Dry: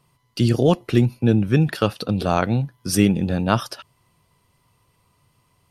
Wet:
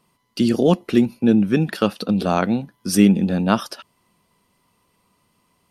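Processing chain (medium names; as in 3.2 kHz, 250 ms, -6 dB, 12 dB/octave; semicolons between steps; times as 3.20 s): resonant low shelf 160 Hz -6 dB, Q 3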